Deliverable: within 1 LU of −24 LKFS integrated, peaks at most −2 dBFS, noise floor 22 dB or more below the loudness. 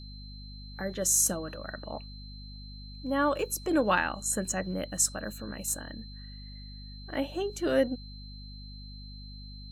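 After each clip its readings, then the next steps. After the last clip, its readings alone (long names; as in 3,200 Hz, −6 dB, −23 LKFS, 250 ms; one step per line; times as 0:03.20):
mains hum 50 Hz; hum harmonics up to 250 Hz; level of the hum −42 dBFS; interfering tone 4,100 Hz; level of the tone −49 dBFS; integrated loudness −29.5 LKFS; sample peak −11.5 dBFS; target loudness −24.0 LKFS
→ hum removal 50 Hz, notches 5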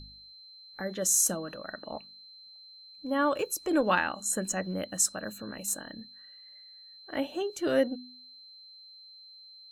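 mains hum none found; interfering tone 4,100 Hz; level of the tone −49 dBFS
→ notch filter 4,100 Hz, Q 30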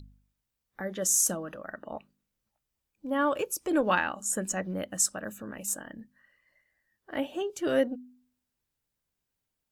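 interfering tone none found; integrated loudness −29.5 LKFS; sample peak −11.5 dBFS; target loudness −24.0 LKFS
→ level +5.5 dB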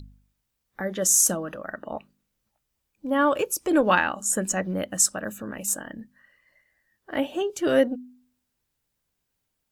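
integrated loudness −24.0 LKFS; sample peak −6.0 dBFS; background noise floor −79 dBFS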